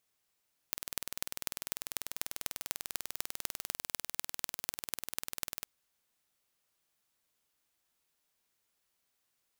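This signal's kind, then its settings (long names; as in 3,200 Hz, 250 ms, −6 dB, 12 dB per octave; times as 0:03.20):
impulse train 20.2 per second, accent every 5, −4.5 dBFS 4.95 s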